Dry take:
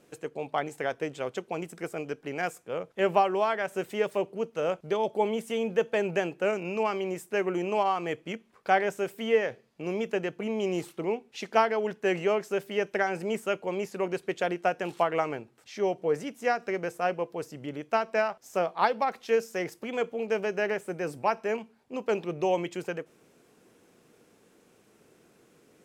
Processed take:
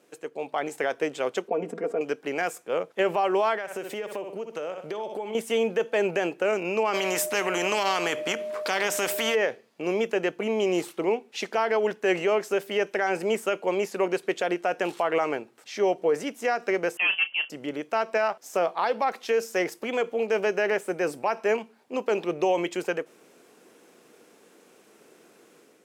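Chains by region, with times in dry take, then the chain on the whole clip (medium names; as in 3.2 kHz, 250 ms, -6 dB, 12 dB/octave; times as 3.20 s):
1.48–2.01 s: band-pass filter 360 Hz, Q 0.95 + comb 4.3 ms, depth 85% + level flattener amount 50%
3.56–5.35 s: flutter echo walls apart 10.7 m, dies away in 0.3 s + compression 16:1, threshold -34 dBFS
6.93–9.34 s: whistle 610 Hz -36 dBFS + spectrum-flattening compressor 2:1
16.97–17.50 s: overload inside the chain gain 25.5 dB + doubling 33 ms -12 dB + frequency inversion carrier 3.2 kHz
whole clip: high-pass 270 Hz 12 dB/octave; peak limiter -21.5 dBFS; level rider gain up to 6.5 dB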